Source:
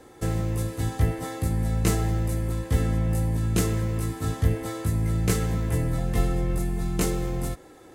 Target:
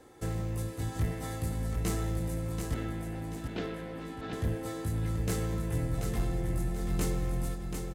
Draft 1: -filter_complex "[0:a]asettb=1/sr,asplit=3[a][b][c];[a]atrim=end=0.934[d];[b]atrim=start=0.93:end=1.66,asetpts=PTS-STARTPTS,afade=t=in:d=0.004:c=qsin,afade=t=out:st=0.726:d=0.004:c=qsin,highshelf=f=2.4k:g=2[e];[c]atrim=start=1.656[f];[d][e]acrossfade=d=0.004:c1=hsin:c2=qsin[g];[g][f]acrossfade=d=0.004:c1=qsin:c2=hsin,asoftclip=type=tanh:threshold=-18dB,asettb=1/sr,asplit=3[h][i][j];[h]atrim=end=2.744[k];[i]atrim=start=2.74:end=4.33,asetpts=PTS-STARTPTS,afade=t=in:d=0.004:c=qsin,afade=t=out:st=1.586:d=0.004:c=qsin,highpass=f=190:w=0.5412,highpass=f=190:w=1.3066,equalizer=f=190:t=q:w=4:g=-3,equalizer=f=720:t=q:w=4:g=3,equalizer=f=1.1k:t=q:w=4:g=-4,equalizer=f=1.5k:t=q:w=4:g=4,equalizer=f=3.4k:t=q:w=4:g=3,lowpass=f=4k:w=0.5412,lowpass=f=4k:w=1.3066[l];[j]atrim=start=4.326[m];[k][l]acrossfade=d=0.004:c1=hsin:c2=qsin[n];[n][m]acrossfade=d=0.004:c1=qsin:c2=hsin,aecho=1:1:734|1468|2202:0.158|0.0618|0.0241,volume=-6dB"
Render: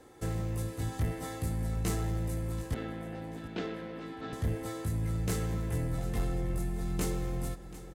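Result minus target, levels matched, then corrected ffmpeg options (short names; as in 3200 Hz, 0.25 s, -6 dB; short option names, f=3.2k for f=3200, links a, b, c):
echo-to-direct -10 dB
-filter_complex "[0:a]asettb=1/sr,asplit=3[a][b][c];[a]atrim=end=0.934[d];[b]atrim=start=0.93:end=1.66,asetpts=PTS-STARTPTS,afade=t=in:d=0.004:c=qsin,afade=t=out:st=0.726:d=0.004:c=qsin,highshelf=f=2.4k:g=2[e];[c]atrim=start=1.656[f];[d][e]acrossfade=d=0.004:c1=hsin:c2=qsin[g];[g][f]acrossfade=d=0.004:c1=qsin:c2=hsin,asoftclip=type=tanh:threshold=-18dB,asettb=1/sr,asplit=3[h][i][j];[h]atrim=end=2.744[k];[i]atrim=start=2.74:end=4.33,asetpts=PTS-STARTPTS,afade=t=in:d=0.004:c=qsin,afade=t=out:st=1.586:d=0.004:c=qsin,highpass=f=190:w=0.5412,highpass=f=190:w=1.3066,equalizer=f=190:t=q:w=4:g=-3,equalizer=f=720:t=q:w=4:g=3,equalizer=f=1.1k:t=q:w=4:g=-4,equalizer=f=1.5k:t=q:w=4:g=4,equalizer=f=3.4k:t=q:w=4:g=3,lowpass=f=4k:w=0.5412,lowpass=f=4k:w=1.3066[l];[j]atrim=start=4.326[m];[k][l]acrossfade=d=0.004:c1=hsin:c2=qsin[n];[n][m]acrossfade=d=0.004:c1=qsin:c2=hsin,aecho=1:1:734|1468|2202|2936|3670:0.501|0.195|0.0762|0.0297|0.0116,volume=-6dB"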